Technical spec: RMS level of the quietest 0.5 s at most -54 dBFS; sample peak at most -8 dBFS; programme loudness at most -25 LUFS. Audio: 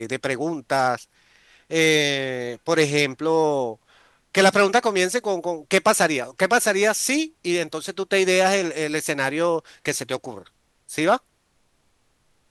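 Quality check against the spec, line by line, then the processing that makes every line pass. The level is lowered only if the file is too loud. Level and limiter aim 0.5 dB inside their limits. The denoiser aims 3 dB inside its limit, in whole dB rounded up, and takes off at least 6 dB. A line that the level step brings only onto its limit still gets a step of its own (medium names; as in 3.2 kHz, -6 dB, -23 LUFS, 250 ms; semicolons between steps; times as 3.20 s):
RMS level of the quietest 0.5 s -66 dBFS: pass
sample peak -3.5 dBFS: fail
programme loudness -21.5 LUFS: fail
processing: trim -4 dB; peak limiter -8.5 dBFS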